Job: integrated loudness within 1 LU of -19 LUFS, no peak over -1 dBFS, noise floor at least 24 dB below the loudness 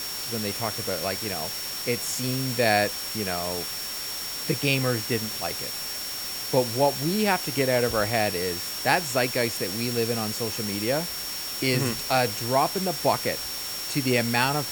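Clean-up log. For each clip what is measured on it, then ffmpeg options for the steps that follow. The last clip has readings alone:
steady tone 5500 Hz; tone level -34 dBFS; noise floor -33 dBFS; noise floor target -50 dBFS; loudness -25.5 LUFS; peak -5.0 dBFS; loudness target -19.0 LUFS
-> -af "bandreject=f=5.5k:w=30"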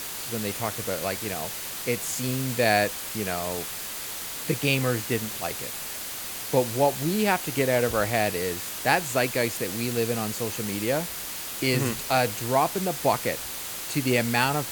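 steady tone none; noise floor -35 dBFS; noise floor target -50 dBFS
-> -af "afftdn=nr=15:nf=-35"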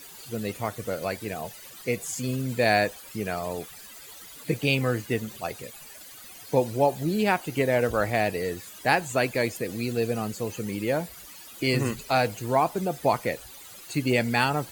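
noise floor -46 dBFS; noise floor target -51 dBFS
-> -af "afftdn=nr=6:nf=-46"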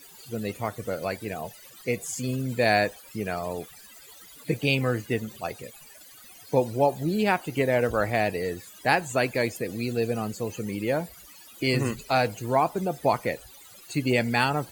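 noise floor -49 dBFS; noise floor target -51 dBFS
-> -af "afftdn=nr=6:nf=-49"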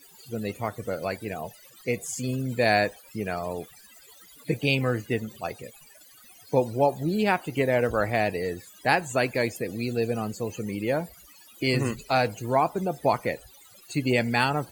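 noise floor -53 dBFS; loudness -27.0 LUFS; peak -6.0 dBFS; loudness target -19.0 LUFS
-> -af "volume=8dB,alimiter=limit=-1dB:level=0:latency=1"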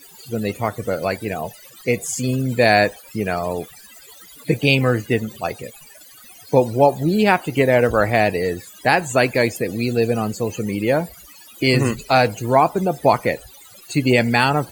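loudness -19.0 LUFS; peak -1.0 dBFS; noise floor -45 dBFS

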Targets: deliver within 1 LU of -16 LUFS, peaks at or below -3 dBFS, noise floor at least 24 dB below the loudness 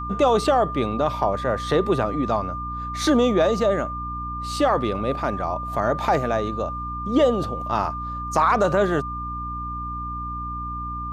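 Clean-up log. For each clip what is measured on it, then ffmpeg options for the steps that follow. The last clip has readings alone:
hum 60 Hz; harmonics up to 300 Hz; hum level -31 dBFS; steady tone 1200 Hz; tone level -29 dBFS; loudness -23.0 LUFS; peak -6.0 dBFS; loudness target -16.0 LUFS
-> -af "bandreject=f=60:t=h:w=4,bandreject=f=120:t=h:w=4,bandreject=f=180:t=h:w=4,bandreject=f=240:t=h:w=4,bandreject=f=300:t=h:w=4"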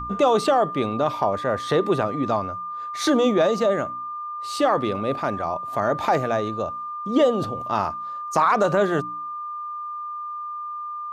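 hum none; steady tone 1200 Hz; tone level -29 dBFS
-> -af "bandreject=f=1.2k:w=30"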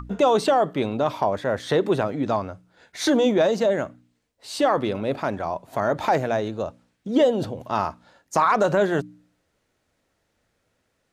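steady tone none; loudness -23.0 LUFS; peak -7.0 dBFS; loudness target -16.0 LUFS
-> -af "volume=7dB,alimiter=limit=-3dB:level=0:latency=1"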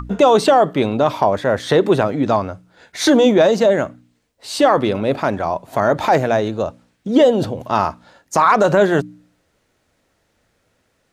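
loudness -16.5 LUFS; peak -3.0 dBFS; noise floor -66 dBFS

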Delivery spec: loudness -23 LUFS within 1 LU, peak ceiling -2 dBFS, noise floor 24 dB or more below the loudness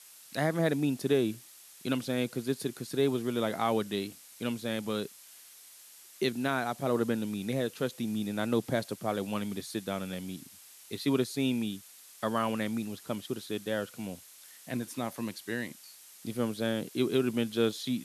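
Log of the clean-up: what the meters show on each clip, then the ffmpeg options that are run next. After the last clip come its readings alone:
noise floor -54 dBFS; noise floor target -57 dBFS; loudness -32.5 LUFS; peak -15.5 dBFS; loudness target -23.0 LUFS
-> -af "afftdn=nr=6:nf=-54"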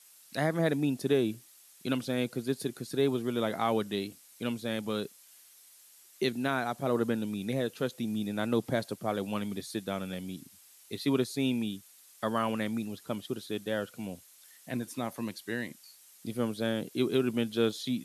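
noise floor -58 dBFS; loudness -32.5 LUFS; peak -15.5 dBFS; loudness target -23.0 LUFS
-> -af "volume=9.5dB"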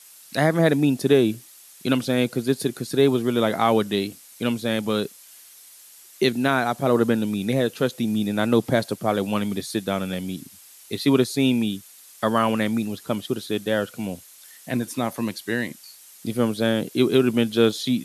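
loudness -23.0 LUFS; peak -6.0 dBFS; noise floor -48 dBFS

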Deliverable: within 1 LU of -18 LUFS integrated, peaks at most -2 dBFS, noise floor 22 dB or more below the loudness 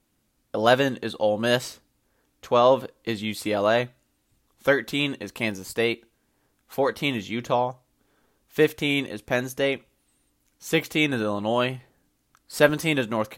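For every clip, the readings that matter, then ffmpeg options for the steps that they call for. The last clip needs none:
loudness -24.5 LUFS; peak -4.5 dBFS; loudness target -18.0 LUFS
-> -af "volume=6.5dB,alimiter=limit=-2dB:level=0:latency=1"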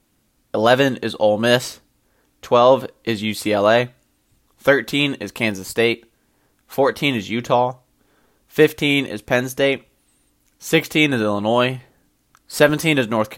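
loudness -18.5 LUFS; peak -2.0 dBFS; noise floor -64 dBFS

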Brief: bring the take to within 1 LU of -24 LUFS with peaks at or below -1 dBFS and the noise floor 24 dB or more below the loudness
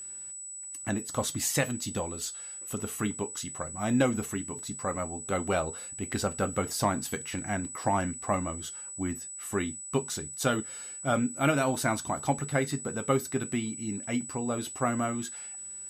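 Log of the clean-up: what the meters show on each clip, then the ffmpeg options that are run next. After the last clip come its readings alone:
steady tone 7900 Hz; tone level -39 dBFS; loudness -31.0 LUFS; peak -13.0 dBFS; loudness target -24.0 LUFS
-> -af "bandreject=f=7.9k:w=30"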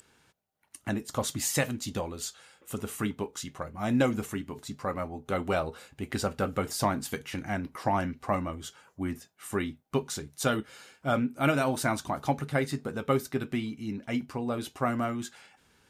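steady tone none; loudness -31.5 LUFS; peak -13.5 dBFS; loudness target -24.0 LUFS
-> -af "volume=7.5dB"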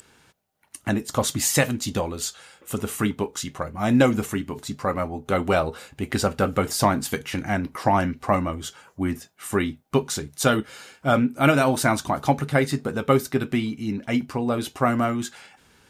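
loudness -24.0 LUFS; peak -6.0 dBFS; noise floor -59 dBFS

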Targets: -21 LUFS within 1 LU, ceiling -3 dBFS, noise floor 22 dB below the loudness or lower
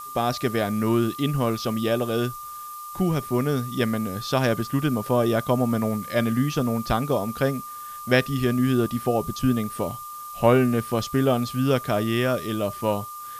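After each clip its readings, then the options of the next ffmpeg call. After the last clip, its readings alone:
steady tone 1200 Hz; tone level -35 dBFS; noise floor -37 dBFS; noise floor target -46 dBFS; loudness -24.0 LUFS; peak -5.0 dBFS; loudness target -21.0 LUFS
-> -af "bandreject=f=1.2k:w=30"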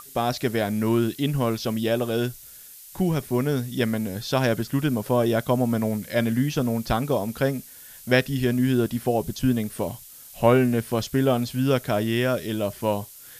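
steady tone none; noise floor -45 dBFS; noise floor target -47 dBFS
-> -af "afftdn=nr=6:nf=-45"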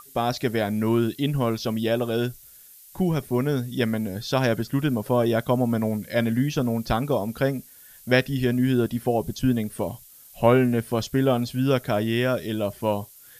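noise floor -49 dBFS; loudness -24.5 LUFS; peak -5.0 dBFS; loudness target -21.0 LUFS
-> -af "volume=3.5dB,alimiter=limit=-3dB:level=0:latency=1"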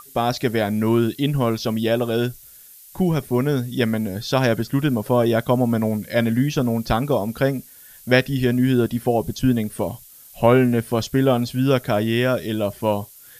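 loudness -21.0 LUFS; peak -3.0 dBFS; noise floor -46 dBFS

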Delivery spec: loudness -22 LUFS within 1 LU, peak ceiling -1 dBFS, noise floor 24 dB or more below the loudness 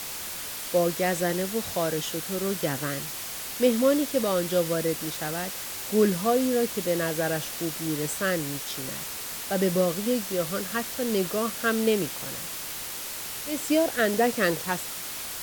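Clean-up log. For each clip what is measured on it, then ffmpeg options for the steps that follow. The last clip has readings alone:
noise floor -36 dBFS; noise floor target -51 dBFS; loudness -27.0 LUFS; peak -9.5 dBFS; loudness target -22.0 LUFS
-> -af "afftdn=nr=15:nf=-36"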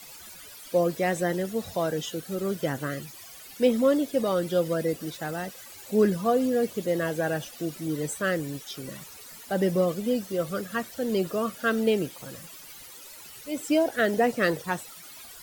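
noise floor -46 dBFS; noise floor target -52 dBFS
-> -af "afftdn=nr=6:nf=-46"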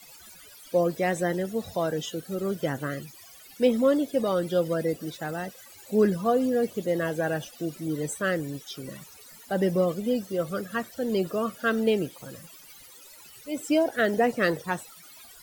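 noise floor -50 dBFS; noise floor target -52 dBFS
-> -af "afftdn=nr=6:nf=-50"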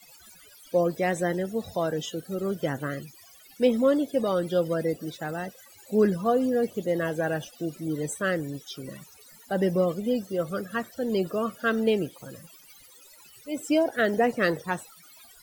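noise floor -53 dBFS; loudness -27.5 LUFS; peak -10.5 dBFS; loudness target -22.0 LUFS
-> -af "volume=5.5dB"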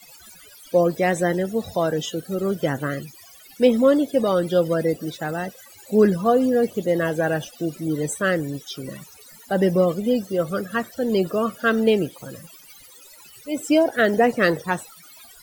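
loudness -22.0 LUFS; peak -5.0 dBFS; noise floor -47 dBFS

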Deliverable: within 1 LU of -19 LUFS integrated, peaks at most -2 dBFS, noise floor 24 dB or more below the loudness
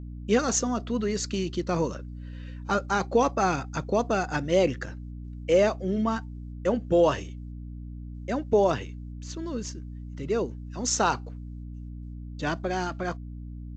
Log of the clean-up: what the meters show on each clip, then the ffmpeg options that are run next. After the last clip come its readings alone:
hum 60 Hz; harmonics up to 300 Hz; hum level -36 dBFS; loudness -27.0 LUFS; peak -10.5 dBFS; loudness target -19.0 LUFS
-> -af "bandreject=f=60:t=h:w=4,bandreject=f=120:t=h:w=4,bandreject=f=180:t=h:w=4,bandreject=f=240:t=h:w=4,bandreject=f=300:t=h:w=4"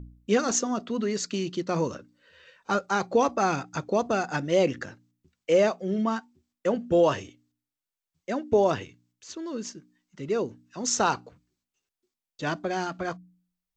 hum none; loudness -27.0 LUFS; peak -10.5 dBFS; loudness target -19.0 LUFS
-> -af "volume=8dB"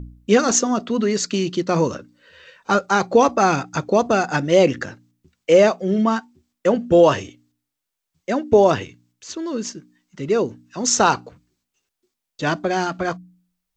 loudness -19.0 LUFS; peak -2.5 dBFS; noise floor -82 dBFS

